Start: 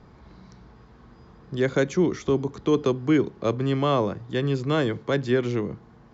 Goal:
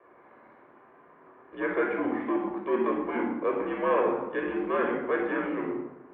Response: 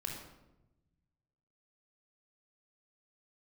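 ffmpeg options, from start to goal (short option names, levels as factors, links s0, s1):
-filter_complex "[0:a]acrusher=bits=5:mode=log:mix=0:aa=0.000001,aeval=exprs='0.335*(cos(1*acos(clip(val(0)/0.335,-1,1)))-cos(1*PI/2))+0.0596*(cos(5*acos(clip(val(0)/0.335,-1,1)))-cos(5*PI/2))':c=same[s0];[1:a]atrim=start_sample=2205[s1];[s0][s1]afir=irnorm=-1:irlink=0,highpass=f=410:t=q:w=0.5412,highpass=f=410:t=q:w=1.307,lowpass=f=2400:t=q:w=0.5176,lowpass=f=2400:t=q:w=0.7071,lowpass=f=2400:t=q:w=1.932,afreqshift=-72,volume=0.668"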